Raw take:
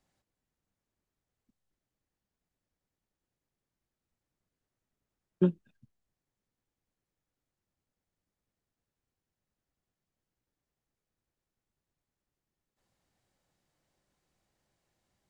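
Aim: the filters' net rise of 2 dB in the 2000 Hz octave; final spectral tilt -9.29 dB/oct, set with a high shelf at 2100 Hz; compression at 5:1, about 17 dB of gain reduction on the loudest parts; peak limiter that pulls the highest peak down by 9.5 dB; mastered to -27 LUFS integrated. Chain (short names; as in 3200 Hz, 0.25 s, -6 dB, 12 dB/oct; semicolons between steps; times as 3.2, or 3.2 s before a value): bell 2000 Hz +6 dB; high shelf 2100 Hz -5.5 dB; compressor 5:1, threshold -39 dBFS; gain +26 dB; limiter -10 dBFS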